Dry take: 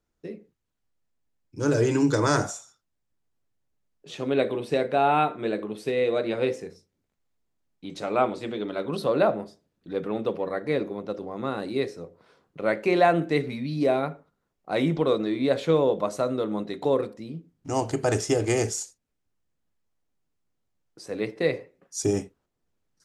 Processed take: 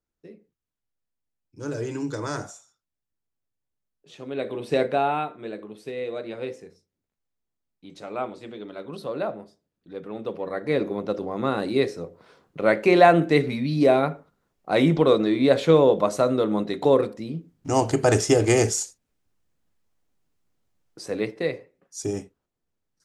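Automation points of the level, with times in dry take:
0:04.31 −8 dB
0:04.82 +3.5 dB
0:05.27 −7 dB
0:10.04 −7 dB
0:10.94 +5 dB
0:21.07 +5 dB
0:21.57 −4 dB

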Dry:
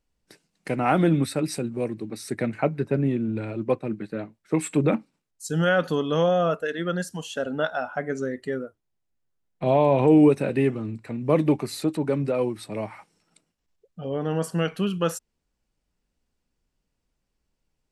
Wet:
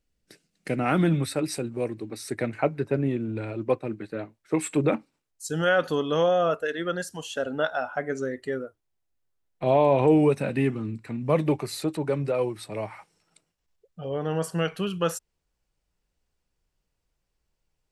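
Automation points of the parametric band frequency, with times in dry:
parametric band −8.5 dB 0.65 octaves
0:00.87 940 Hz
0:01.30 190 Hz
0:09.98 190 Hz
0:10.96 780 Hz
0:11.46 240 Hz

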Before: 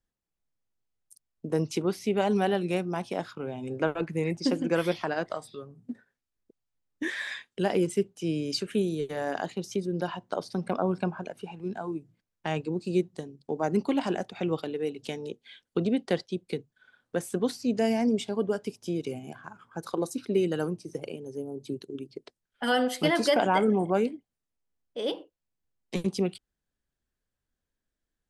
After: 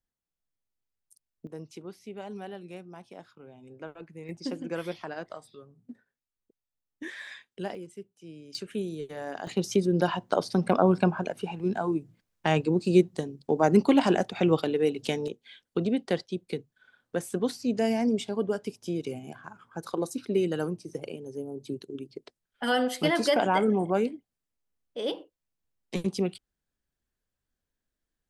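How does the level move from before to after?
−5 dB
from 0:01.47 −14.5 dB
from 0:04.29 −7.5 dB
from 0:07.75 −16.5 dB
from 0:08.55 −5.5 dB
from 0:09.47 +6 dB
from 0:15.28 −0.5 dB

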